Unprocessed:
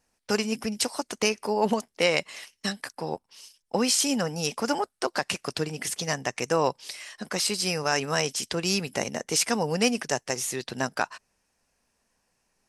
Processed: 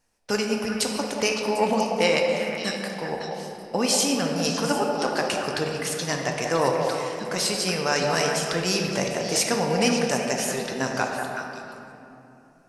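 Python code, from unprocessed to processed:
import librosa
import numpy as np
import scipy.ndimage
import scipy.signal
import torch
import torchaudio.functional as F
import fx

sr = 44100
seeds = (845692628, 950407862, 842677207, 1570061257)

y = fx.echo_stepped(x, sr, ms=187, hz=600.0, octaves=1.4, feedback_pct=70, wet_db=-2.0)
y = fx.room_shoebox(y, sr, seeds[0], volume_m3=130.0, walls='hard', distance_m=0.34)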